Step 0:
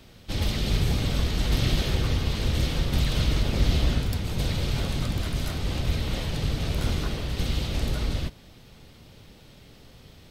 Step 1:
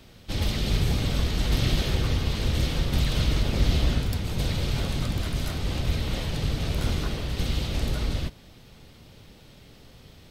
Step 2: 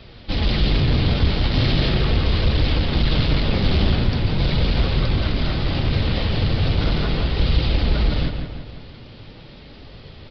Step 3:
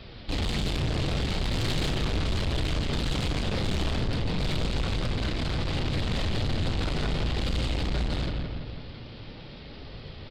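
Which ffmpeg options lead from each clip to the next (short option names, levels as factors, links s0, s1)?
-af anull
-filter_complex "[0:a]aresample=11025,aeval=exprs='0.316*sin(PI/2*2.51*val(0)/0.316)':c=same,aresample=44100,flanger=delay=1.5:depth=9.5:regen=-45:speed=0.4:shape=triangular,asplit=2[s0][s1];[s1]adelay=168,lowpass=f=3200:p=1,volume=0.501,asplit=2[s2][s3];[s3]adelay=168,lowpass=f=3200:p=1,volume=0.52,asplit=2[s4][s5];[s5]adelay=168,lowpass=f=3200:p=1,volume=0.52,asplit=2[s6][s7];[s7]adelay=168,lowpass=f=3200:p=1,volume=0.52,asplit=2[s8][s9];[s9]adelay=168,lowpass=f=3200:p=1,volume=0.52,asplit=2[s10][s11];[s11]adelay=168,lowpass=f=3200:p=1,volume=0.52[s12];[s0][s2][s4][s6][s8][s10][s12]amix=inputs=7:normalize=0"
-filter_complex "[0:a]aeval=exprs='0.473*(cos(1*acos(clip(val(0)/0.473,-1,1)))-cos(1*PI/2))+0.0944*(cos(3*acos(clip(val(0)/0.473,-1,1)))-cos(3*PI/2))+0.0944*(cos(4*acos(clip(val(0)/0.473,-1,1)))-cos(4*PI/2))+0.0422*(cos(5*acos(clip(val(0)/0.473,-1,1)))-cos(5*PI/2))':c=same,asoftclip=type=tanh:threshold=0.0668,asplit=2[s0][s1];[s1]adelay=35,volume=0.251[s2];[s0][s2]amix=inputs=2:normalize=0"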